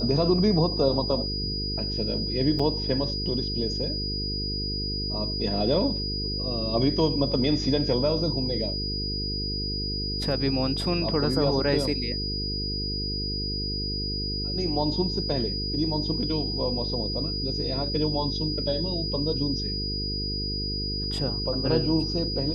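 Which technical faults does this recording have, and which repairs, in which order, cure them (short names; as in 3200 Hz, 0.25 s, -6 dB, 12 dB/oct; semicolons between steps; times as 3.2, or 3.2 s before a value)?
buzz 50 Hz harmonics 9 -32 dBFS
tone 4900 Hz -30 dBFS
2.59 gap 4.9 ms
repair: de-hum 50 Hz, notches 9; notch 4900 Hz, Q 30; interpolate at 2.59, 4.9 ms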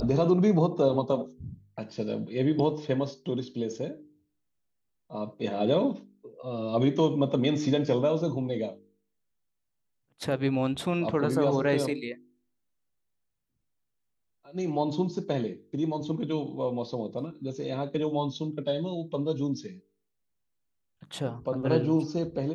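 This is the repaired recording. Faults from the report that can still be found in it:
none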